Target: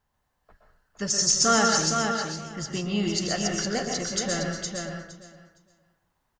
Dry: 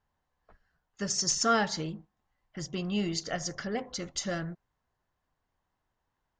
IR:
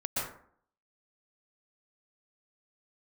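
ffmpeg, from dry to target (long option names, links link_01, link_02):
-filter_complex "[0:a]aecho=1:1:463|926|1389:0.562|0.09|0.0144,asplit=2[link_01][link_02];[1:a]atrim=start_sample=2205,highshelf=frequency=3700:gain=12[link_03];[link_02][link_03]afir=irnorm=-1:irlink=0,volume=-6.5dB[link_04];[link_01][link_04]amix=inputs=2:normalize=0"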